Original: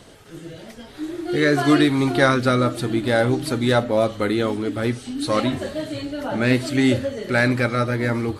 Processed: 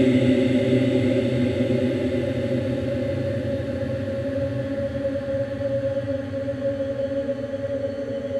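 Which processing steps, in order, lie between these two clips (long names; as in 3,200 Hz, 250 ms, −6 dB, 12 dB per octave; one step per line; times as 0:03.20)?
high-shelf EQ 3,300 Hz −11.5 dB
mains-hum notches 60/120 Hz
extreme stretch with random phases 43×, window 0.25 s, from 0:06.93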